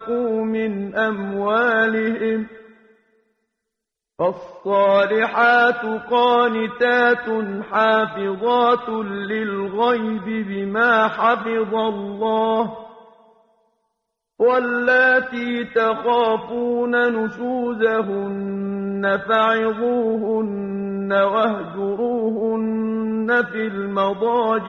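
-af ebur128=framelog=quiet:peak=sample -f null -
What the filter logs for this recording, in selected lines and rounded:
Integrated loudness:
  I:         -19.5 LUFS
  Threshold: -29.9 LUFS
Loudness range:
  LRA:         5.0 LU
  Threshold: -40.0 LUFS
  LRA low:   -22.5 LUFS
  LRA high:  -17.5 LUFS
Sample peak:
  Peak:       -3.5 dBFS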